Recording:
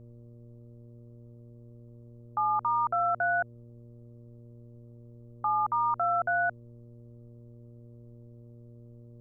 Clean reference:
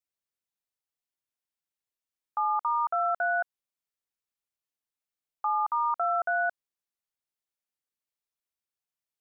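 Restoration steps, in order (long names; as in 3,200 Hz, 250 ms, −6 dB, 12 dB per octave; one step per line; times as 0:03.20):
hum removal 118.3 Hz, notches 5
downward expander −42 dBFS, range −21 dB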